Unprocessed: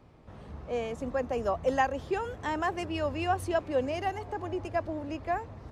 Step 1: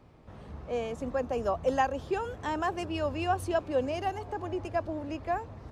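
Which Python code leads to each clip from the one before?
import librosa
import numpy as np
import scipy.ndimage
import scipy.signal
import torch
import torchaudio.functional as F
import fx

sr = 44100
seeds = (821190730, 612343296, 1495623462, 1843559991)

y = fx.dynamic_eq(x, sr, hz=2000.0, q=4.7, threshold_db=-54.0, ratio=4.0, max_db=-6)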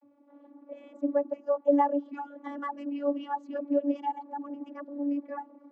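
y = fx.envelope_sharpen(x, sr, power=1.5)
y = fx.vibrato(y, sr, rate_hz=1.3, depth_cents=88.0)
y = fx.vocoder(y, sr, bands=32, carrier='saw', carrier_hz=285.0)
y = y * librosa.db_to_amplitude(2.0)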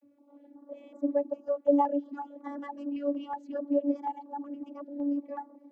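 y = fx.filter_held_notch(x, sr, hz=5.4, low_hz=960.0, high_hz=2800.0)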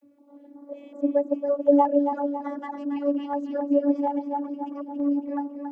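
y = fx.echo_feedback(x, sr, ms=277, feedback_pct=49, wet_db=-7.5)
y = y * librosa.db_to_amplitude(5.0)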